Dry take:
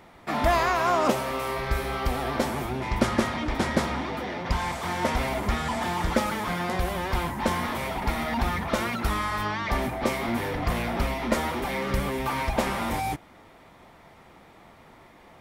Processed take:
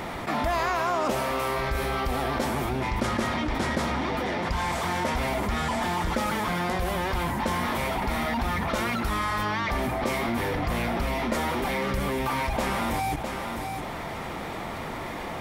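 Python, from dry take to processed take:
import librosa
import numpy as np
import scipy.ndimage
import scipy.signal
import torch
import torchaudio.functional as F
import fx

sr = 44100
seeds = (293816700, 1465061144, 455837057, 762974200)

y = x + 10.0 ** (-18.0 / 20.0) * np.pad(x, (int(657 * sr / 1000.0), 0))[:len(x)]
y = fx.env_flatten(y, sr, amount_pct=70)
y = F.gain(torch.from_numpy(y), -6.0).numpy()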